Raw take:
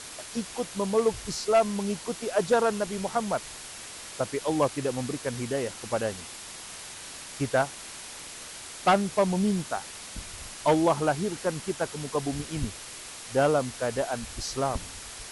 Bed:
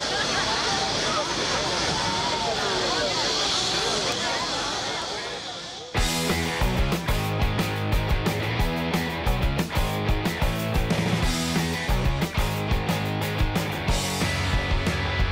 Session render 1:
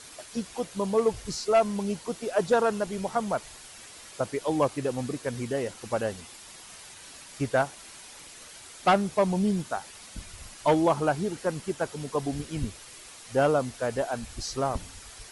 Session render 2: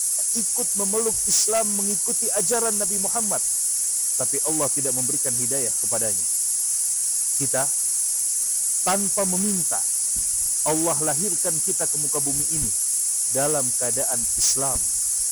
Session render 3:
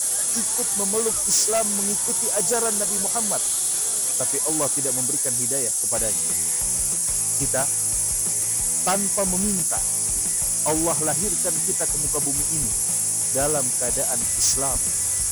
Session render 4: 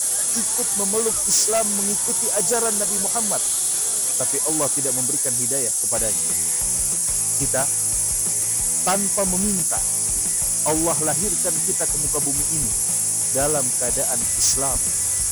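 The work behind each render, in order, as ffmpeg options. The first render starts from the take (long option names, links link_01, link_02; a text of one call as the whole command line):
ffmpeg -i in.wav -af "afftdn=noise_reduction=7:noise_floor=-42" out.wav
ffmpeg -i in.wav -af "aexciter=amount=11.3:drive=9.5:freq=5700,asoftclip=type=tanh:threshold=-14.5dB" out.wav
ffmpeg -i in.wav -i bed.wav -filter_complex "[1:a]volume=-14dB[link_01];[0:a][link_01]amix=inputs=2:normalize=0" out.wav
ffmpeg -i in.wav -af "volume=1.5dB" out.wav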